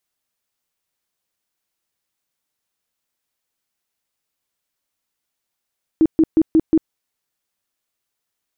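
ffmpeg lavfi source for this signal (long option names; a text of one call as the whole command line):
ffmpeg -f lavfi -i "aevalsrc='0.355*sin(2*PI*320*mod(t,0.18))*lt(mod(t,0.18),15/320)':duration=0.9:sample_rate=44100" out.wav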